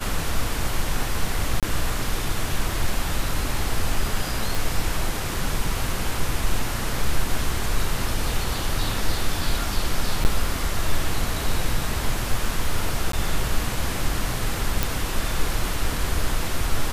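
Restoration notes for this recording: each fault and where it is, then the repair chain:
1.6–1.63 gap 27 ms
4.55 pop
10.24–10.25 gap 9.6 ms
13.12–13.13 gap 13 ms
14.83 pop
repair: de-click; interpolate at 1.6, 27 ms; interpolate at 10.24, 9.6 ms; interpolate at 13.12, 13 ms

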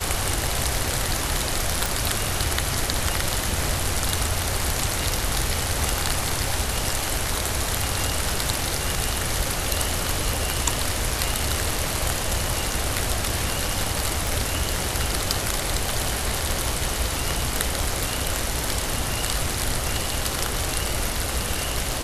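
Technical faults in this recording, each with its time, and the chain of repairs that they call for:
1.86 pop
14.27 pop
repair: de-click

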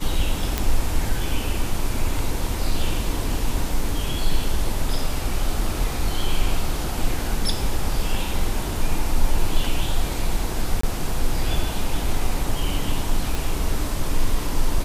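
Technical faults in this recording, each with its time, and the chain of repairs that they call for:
0.58 pop
10.81–10.83 gap 24 ms
13.35 pop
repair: de-click; interpolate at 10.81, 24 ms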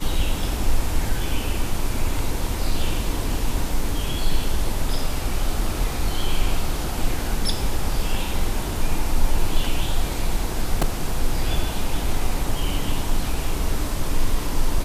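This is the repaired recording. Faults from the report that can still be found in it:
none

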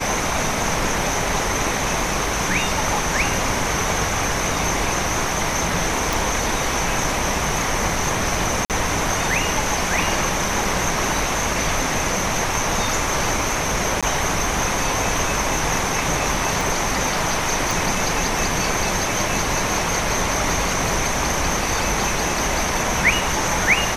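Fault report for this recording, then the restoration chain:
6.13 pop
8.65–8.7 gap 48 ms
14.01–14.03 gap 16 ms
16.61 pop
17.71 pop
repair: de-click; interpolate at 8.65, 48 ms; interpolate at 14.01, 16 ms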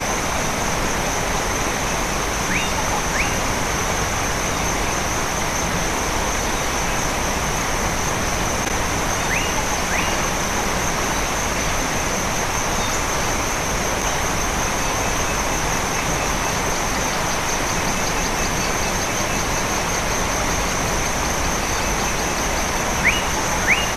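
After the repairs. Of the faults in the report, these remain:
16.61 pop

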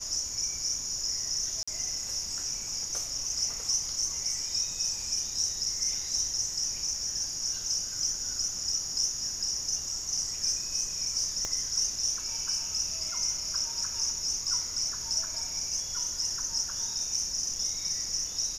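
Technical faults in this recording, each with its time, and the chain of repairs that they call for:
1.63–1.68 gap 45 ms
11.45 pop -18 dBFS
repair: de-click; interpolate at 1.63, 45 ms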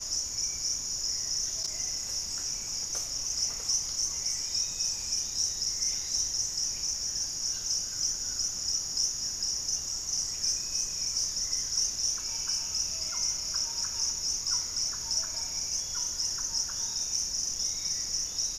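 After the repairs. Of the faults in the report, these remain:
11.45 pop

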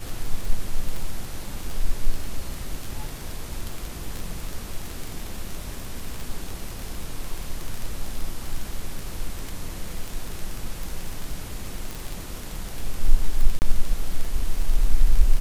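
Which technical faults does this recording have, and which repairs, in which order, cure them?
crackle 25/s -24 dBFS
13.59–13.62 gap 29 ms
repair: de-click; interpolate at 13.59, 29 ms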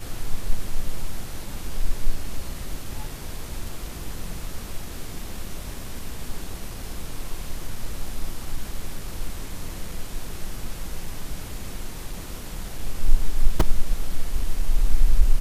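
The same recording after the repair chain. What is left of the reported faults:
none

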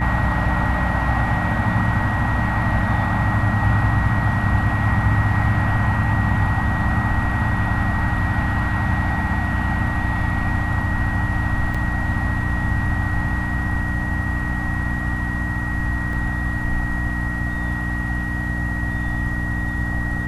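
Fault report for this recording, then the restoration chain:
hum 60 Hz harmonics 5 -25 dBFS
tone 1900 Hz -27 dBFS
11.74–11.75 gap 5.6 ms
16.13 gap 2.3 ms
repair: notch 1900 Hz, Q 30; de-hum 60 Hz, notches 5; interpolate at 11.74, 5.6 ms; interpolate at 16.13, 2.3 ms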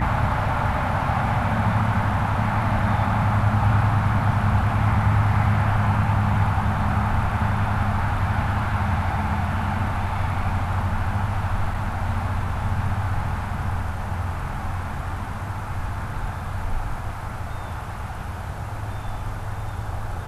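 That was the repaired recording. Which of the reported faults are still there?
none

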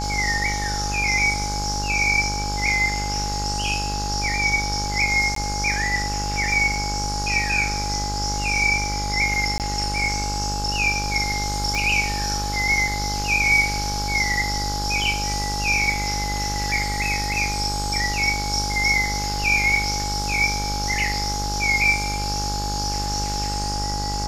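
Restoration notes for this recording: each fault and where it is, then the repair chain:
buzz 50 Hz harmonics 33 -28 dBFS
tone 830 Hz -28 dBFS
5.35–5.36 gap 13 ms
9.58–9.6 gap 18 ms
11.75 pop -12 dBFS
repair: de-click; notch 830 Hz, Q 30; de-hum 50 Hz, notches 33; interpolate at 5.35, 13 ms; interpolate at 9.58, 18 ms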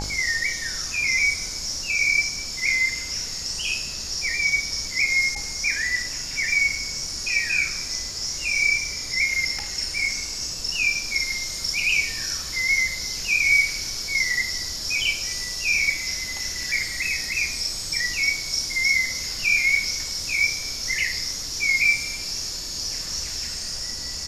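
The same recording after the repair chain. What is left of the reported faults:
11.75 pop

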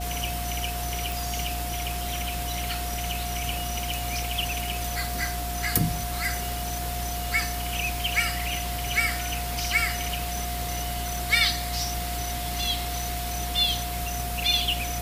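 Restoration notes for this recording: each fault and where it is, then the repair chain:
crackle 21/s -35 dBFS
hum 60 Hz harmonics 5 -33 dBFS
tone 710 Hz -34 dBFS
1.12 pop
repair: de-click; notch 710 Hz, Q 30; de-hum 60 Hz, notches 5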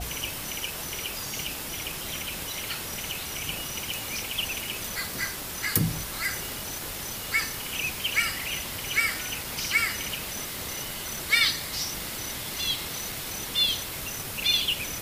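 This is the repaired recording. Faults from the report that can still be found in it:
none

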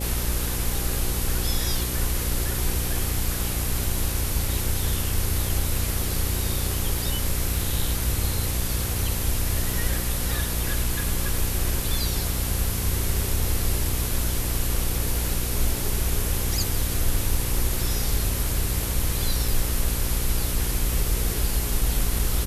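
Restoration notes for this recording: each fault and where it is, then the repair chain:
buzz 60 Hz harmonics 9 -29 dBFS
7.06 gap 2.8 ms
19.48 gap 2.4 ms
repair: de-hum 60 Hz, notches 9; interpolate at 7.06, 2.8 ms; interpolate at 19.48, 2.4 ms

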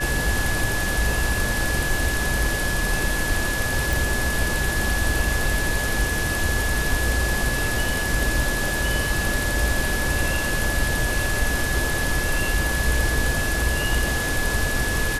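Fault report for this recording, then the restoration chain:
tone 1700 Hz -26 dBFS
3.93 pop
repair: de-click; notch 1700 Hz, Q 30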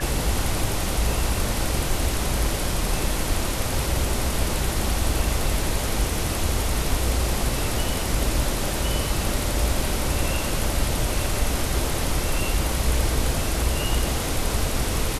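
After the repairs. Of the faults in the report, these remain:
none

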